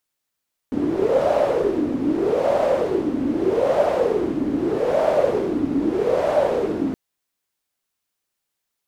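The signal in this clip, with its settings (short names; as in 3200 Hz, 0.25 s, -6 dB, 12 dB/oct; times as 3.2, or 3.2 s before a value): wind-like swept noise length 6.22 s, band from 280 Hz, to 610 Hz, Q 7.2, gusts 5, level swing 4 dB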